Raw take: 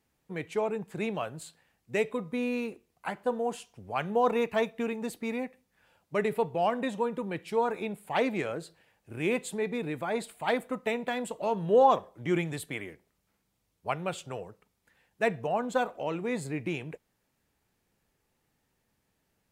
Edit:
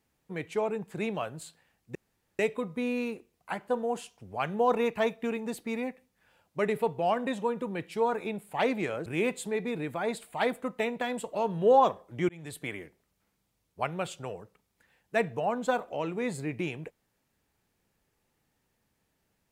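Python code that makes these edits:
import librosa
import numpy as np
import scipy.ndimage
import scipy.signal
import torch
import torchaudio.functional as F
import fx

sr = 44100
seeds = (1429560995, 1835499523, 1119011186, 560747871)

y = fx.edit(x, sr, fx.insert_room_tone(at_s=1.95, length_s=0.44),
    fx.cut(start_s=8.62, length_s=0.51),
    fx.fade_in_span(start_s=12.36, length_s=0.36), tone=tone)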